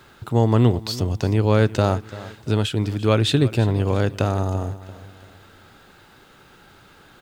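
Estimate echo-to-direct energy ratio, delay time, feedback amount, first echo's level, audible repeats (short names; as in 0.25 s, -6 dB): -16.0 dB, 0.34 s, 41%, -17.0 dB, 3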